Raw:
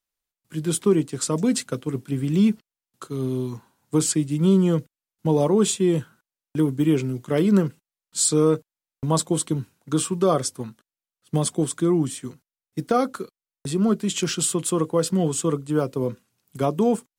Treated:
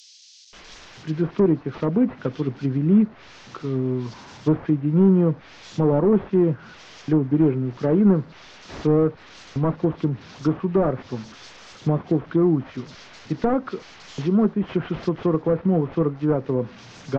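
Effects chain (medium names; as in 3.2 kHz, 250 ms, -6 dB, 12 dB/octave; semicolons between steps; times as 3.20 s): one-bit delta coder 32 kbps, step -38 dBFS; bands offset in time highs, lows 530 ms, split 3.7 kHz; low-pass that closes with the level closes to 1.4 kHz, closed at -20 dBFS; trim +2 dB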